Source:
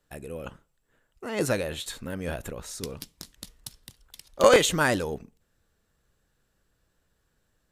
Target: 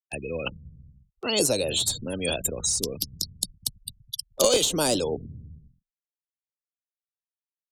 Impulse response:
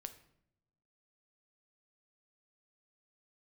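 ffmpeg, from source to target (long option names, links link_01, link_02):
-filter_complex "[0:a]afftfilt=real='re*gte(hypot(re,im),0.01)':imag='im*gte(hypot(re,im),0.01)':win_size=1024:overlap=0.75,agate=range=-11dB:threshold=-47dB:ratio=16:detection=peak,acrossover=split=140|4600[link_01][link_02][link_03];[link_01]aecho=1:1:190|323|416.1|481.3|526.9:0.631|0.398|0.251|0.158|0.1[link_04];[link_03]alimiter=limit=-23.5dB:level=0:latency=1:release=290[link_05];[link_04][link_02][link_05]amix=inputs=3:normalize=0,aexciter=amount=15.5:drive=7.4:freq=2900,asplit=2[link_06][link_07];[link_07]asoftclip=type=tanh:threshold=-11.5dB,volume=-7.5dB[link_08];[link_06][link_08]amix=inputs=2:normalize=0,acrossover=split=85|240|840[link_09][link_10][link_11][link_12];[link_09]acompressor=threshold=-48dB:ratio=4[link_13];[link_10]acompressor=threshold=-44dB:ratio=4[link_14];[link_11]acompressor=threshold=-24dB:ratio=4[link_15];[link_12]acompressor=threshold=-31dB:ratio=4[link_16];[link_13][link_14][link_15][link_16]amix=inputs=4:normalize=0,volume=3dB"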